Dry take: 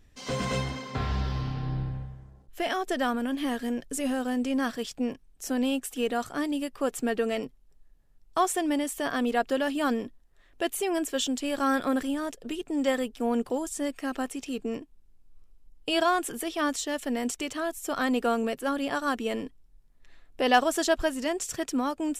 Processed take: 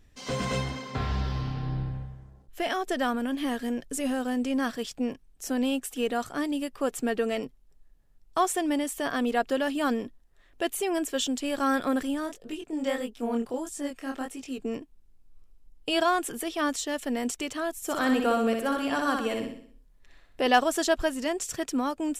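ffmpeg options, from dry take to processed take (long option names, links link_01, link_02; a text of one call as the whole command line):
ffmpeg -i in.wav -filter_complex "[0:a]asplit=3[link_01][link_02][link_03];[link_01]afade=type=out:start_time=12.26:duration=0.02[link_04];[link_02]flanger=delay=19:depth=7.5:speed=1.6,afade=type=in:start_time=12.26:duration=0.02,afade=type=out:start_time=14.57:duration=0.02[link_05];[link_03]afade=type=in:start_time=14.57:duration=0.02[link_06];[link_04][link_05][link_06]amix=inputs=3:normalize=0,asettb=1/sr,asplit=3[link_07][link_08][link_09];[link_07]atrim=end=17.764[link_10];[link_08]atrim=start=17.76:end=20.47,asetpts=PTS-STARTPTS,afade=type=in:duration=0.004:curve=qsin,afade=type=out:start_time=2.706:duration=0.004:curve=qsin,aecho=1:1:62|124|186|248|310|372:0.596|0.28|0.132|0.0618|0.0291|0.0137,atrim=end_sample=119511[link_11];[link_09]atrim=start=20.466[link_12];[link_10][link_11]acrossfade=duration=0.004:curve1=hsin:curve2=qsin[link_13];[link_13][link_12]acrossfade=duration=0.004:curve1=qsin:curve2=hsin" out.wav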